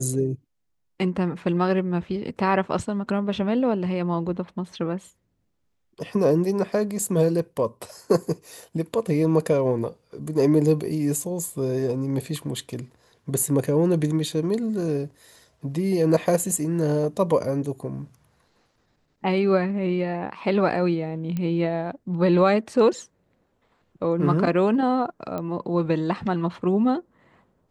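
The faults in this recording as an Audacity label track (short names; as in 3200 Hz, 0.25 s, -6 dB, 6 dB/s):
21.370000	21.370000	pop -17 dBFS
25.380000	25.380000	pop -18 dBFS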